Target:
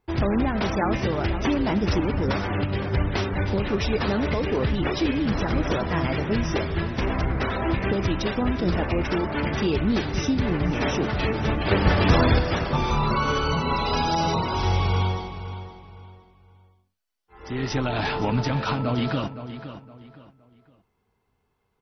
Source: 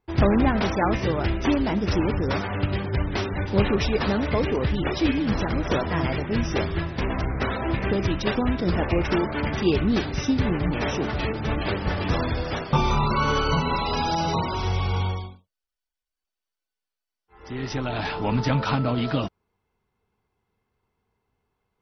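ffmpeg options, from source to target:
ffmpeg -i in.wav -filter_complex "[0:a]alimiter=limit=-16.5dB:level=0:latency=1:release=378,asettb=1/sr,asplit=3[link_01][link_02][link_03];[link_01]atrim=end=11.714[link_04];[link_02]atrim=start=11.71:end=12.39,asetpts=PTS-STARTPTS,afade=type=in:duration=0.004:curve=qsin,afade=type=out:start_time=0.676:duration=0.004:curve=qsin,acontrast=54[link_05];[link_03]atrim=start=12.386[link_06];[link_04][link_05]acrossfade=duration=0.004:curve1=hsin:curve2=qsin[link_07];[link_07][link_06]acrossfade=duration=0.004:curve1=qsin:curve2=hsin,asplit=2[link_08][link_09];[link_09]adelay=515,lowpass=frequency=4000:poles=1,volume=-11.5dB,asplit=2[link_10][link_11];[link_11]adelay=515,lowpass=frequency=4000:poles=1,volume=0.31,asplit=2[link_12][link_13];[link_13]adelay=515,lowpass=frequency=4000:poles=1,volume=0.31[link_14];[link_08][link_10][link_12][link_14]amix=inputs=4:normalize=0,volume=3dB" out.wav

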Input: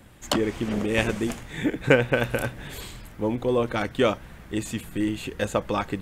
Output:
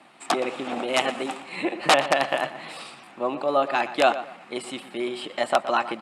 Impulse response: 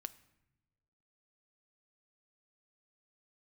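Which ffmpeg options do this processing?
-filter_complex "[0:a]asetrate=50951,aresample=44100,atempo=0.865537,aeval=exprs='(mod(3.55*val(0)+1,2)-1)/3.55':channel_layout=same,highpass=frequency=220:width=0.5412,highpass=frequency=220:width=1.3066,equalizer=frequency=250:width_type=q:width=4:gain=-5,equalizer=frequency=430:width_type=q:width=4:gain=-7,equalizer=frequency=770:width_type=q:width=4:gain=10,equalizer=frequency=1200:width_type=q:width=4:gain=7,equalizer=frequency=2600:width_type=q:width=4:gain=5,equalizer=frequency=6100:width_type=q:width=4:gain=-6,lowpass=frequency=8900:width=0.5412,lowpass=frequency=8900:width=1.3066,asplit=2[link_01][link_02];[link_02]adelay=119,lowpass=frequency=3200:poles=1,volume=-13dB,asplit=2[link_03][link_04];[link_04]adelay=119,lowpass=frequency=3200:poles=1,volume=0.29,asplit=2[link_05][link_06];[link_06]adelay=119,lowpass=frequency=3200:poles=1,volume=0.29[link_07];[link_03][link_05][link_07]amix=inputs=3:normalize=0[link_08];[link_01][link_08]amix=inputs=2:normalize=0"

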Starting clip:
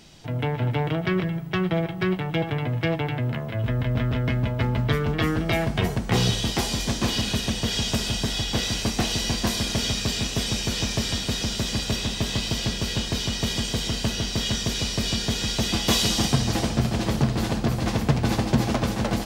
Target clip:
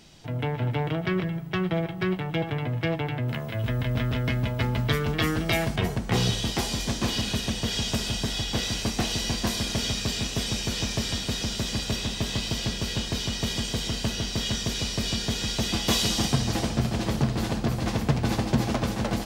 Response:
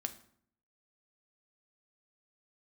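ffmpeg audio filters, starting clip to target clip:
-filter_complex "[0:a]asettb=1/sr,asplit=3[link_01][link_02][link_03];[link_01]atrim=end=3.284[link_04];[link_02]atrim=start=3.28:end=5.76,asetpts=PTS-STARTPTS,afade=type=in:duration=0.004:curve=qsin,afade=type=out:start_time=2.476:duration=0.004:curve=qsin,highshelf=frequency=2900:gain=8.5[link_05];[link_03]atrim=start=5.756[link_06];[link_04][link_05]acrossfade=duration=0.004:curve1=hsin:curve2=qsin[link_07];[link_07][link_06]acrossfade=duration=0.004:curve1=qsin:curve2=hsin,volume=-2.5dB"

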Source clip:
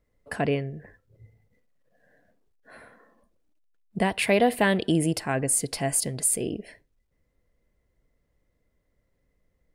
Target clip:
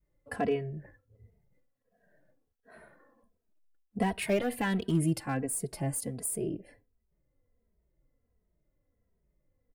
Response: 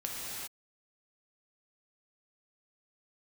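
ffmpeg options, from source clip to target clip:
-filter_complex "[0:a]adynamicequalizer=threshold=0.0126:dfrequency=570:dqfactor=1.1:tfrequency=570:tqfactor=1.1:attack=5:release=100:ratio=0.375:range=4:mode=cutabove:tftype=bell,asoftclip=type=hard:threshold=-18dB,asetnsamples=nb_out_samples=441:pad=0,asendcmd='5.42 equalizer g -13.5',equalizer=frequency=4000:width_type=o:width=2.7:gain=-7,asplit=2[link_01][link_02];[link_02]adelay=2.8,afreqshift=-1.4[link_03];[link_01][link_03]amix=inputs=2:normalize=1"

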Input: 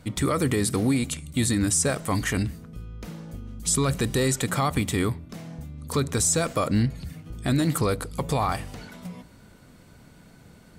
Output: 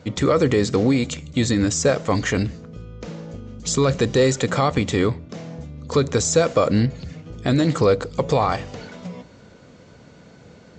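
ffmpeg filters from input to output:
ffmpeg -i in.wav -af "highpass=67,equalizer=frequency=500:width=2.2:gain=8,volume=3.5dB" -ar 16000 -c:a libvorbis -b:a 64k out.ogg

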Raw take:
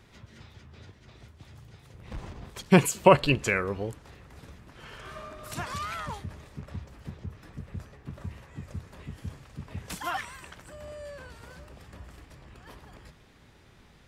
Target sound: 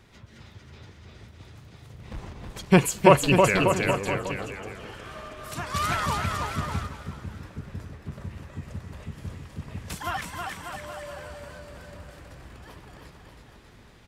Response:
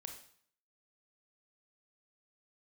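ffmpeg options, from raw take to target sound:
-filter_complex "[0:a]asplit=2[link_01][link_02];[link_02]aecho=0:1:320|592|823.2|1020|1187:0.631|0.398|0.251|0.158|0.1[link_03];[link_01][link_03]amix=inputs=2:normalize=0,asettb=1/sr,asplit=3[link_04][link_05][link_06];[link_04]atrim=end=5.744[link_07];[link_05]atrim=start=5.74:end=6.87,asetpts=PTS-STARTPTS,afade=type=in:duration=0.004:curve=qsin,afade=type=out:start_time=1.126:duration=0.004:curve=qsin,acontrast=62[link_08];[link_06]atrim=start=6.866[link_09];[link_07][link_08]acrossfade=duration=0.004:curve1=hsin:curve2=qsin[link_10];[link_10][link_09]acrossfade=duration=0.004:curve1=qsin:curve2=hsin,asplit=2[link_11][link_12];[link_12]asplit=3[link_13][link_14][link_15];[link_13]adelay=500,afreqshift=97,volume=-19.5dB[link_16];[link_14]adelay=1000,afreqshift=194,volume=-26.6dB[link_17];[link_15]adelay=1500,afreqshift=291,volume=-33.8dB[link_18];[link_16][link_17][link_18]amix=inputs=3:normalize=0[link_19];[link_11][link_19]amix=inputs=2:normalize=0,volume=1dB"

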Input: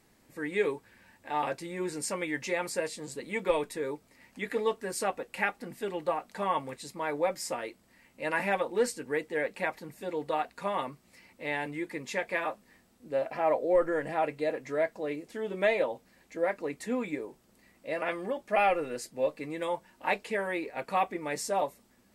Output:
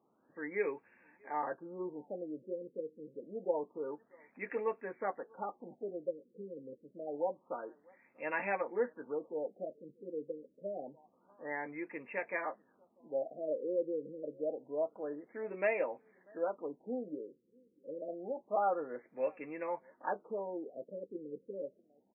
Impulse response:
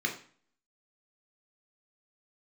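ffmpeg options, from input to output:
-filter_complex "[0:a]highpass=240,lowpass=7800,asplit=2[link_01][link_02];[link_02]adelay=641.4,volume=-28dB,highshelf=frequency=4000:gain=-14.4[link_03];[link_01][link_03]amix=inputs=2:normalize=0,afftfilt=real='re*lt(b*sr/1024,520*pow(2800/520,0.5+0.5*sin(2*PI*0.27*pts/sr)))':imag='im*lt(b*sr/1024,520*pow(2800/520,0.5+0.5*sin(2*PI*0.27*pts/sr)))':win_size=1024:overlap=0.75,volume=-5.5dB"

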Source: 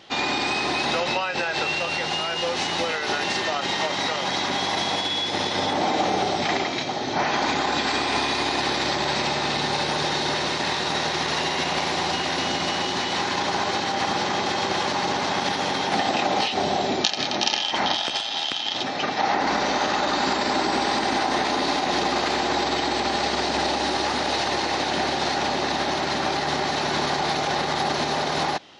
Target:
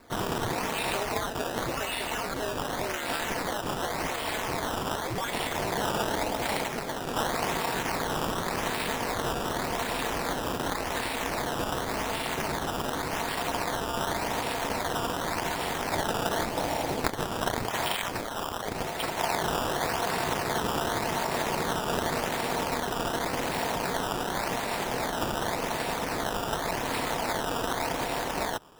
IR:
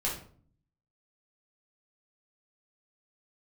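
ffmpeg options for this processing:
-af "acrusher=samples=14:mix=1:aa=0.000001:lfo=1:lforange=14:lforate=0.88,aeval=exprs='val(0)*sin(2*PI*110*n/s)':channel_layout=same,volume=-3dB"

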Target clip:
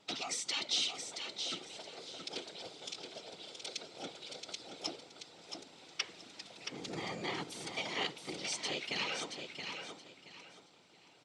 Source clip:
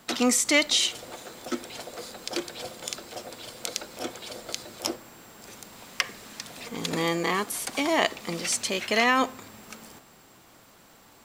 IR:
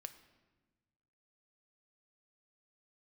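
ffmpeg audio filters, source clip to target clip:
-filter_complex "[0:a]asettb=1/sr,asplit=3[link_01][link_02][link_03];[link_01]atrim=end=6.574[link_04];[link_02]atrim=start=6.57:end=7.24,asetpts=PTS-STARTPTS,afade=type=in:duration=0.004:curve=qsin,afade=type=out:start_time=0.666:duration=0.004:curve=qsin,equalizer=frequency=3500:width_type=o:width=0.68:gain=-8[link_05];[link_03]atrim=start=7.236[link_06];[link_04][link_05]acrossfade=duration=0.004:curve1=hsin:curve2=qsin[link_07];[link_07][link_06]acrossfade=duration=0.004:curve1=qsin:curve2=hsin,afftfilt=real='re*lt(hypot(re,im),0.316)':imag='im*lt(hypot(re,im),0.316)':win_size=1024:overlap=0.75,afftfilt=real='hypot(re,im)*cos(2*PI*random(0))':imag='hypot(re,im)*sin(2*PI*random(1))':win_size=512:overlap=0.75,highpass=160,equalizer=frequency=230:width_type=q:width=4:gain=-6,equalizer=frequency=580:width_type=q:width=4:gain=-4,equalizer=frequency=1100:width_type=q:width=4:gain=-8,equalizer=frequency=1700:width_type=q:width=4:gain=-8,equalizer=frequency=3600:width_type=q:width=4:gain=4,equalizer=frequency=7000:width_type=q:width=4:gain=-6,lowpass=frequency=7300:width=0.5412,lowpass=frequency=7300:width=1.3066,aecho=1:1:674|1348|2022:0.473|0.123|0.032,volume=-2.5dB"

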